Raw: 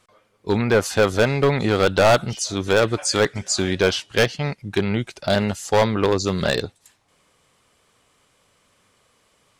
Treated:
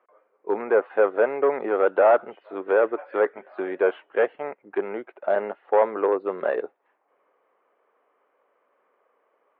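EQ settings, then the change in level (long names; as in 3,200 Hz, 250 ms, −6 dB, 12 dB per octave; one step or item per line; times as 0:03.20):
Gaussian smoothing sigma 4.6 samples
high-pass filter 390 Hz 24 dB per octave
high-frequency loss of the air 390 metres
+1.5 dB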